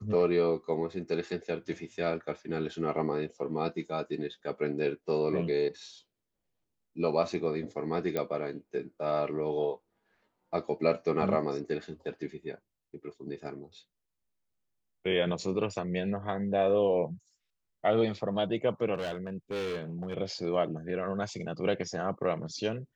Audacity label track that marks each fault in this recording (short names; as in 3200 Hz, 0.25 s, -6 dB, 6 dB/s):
8.170000	8.170000	pop -18 dBFS
18.940000	20.140000	clipped -30.5 dBFS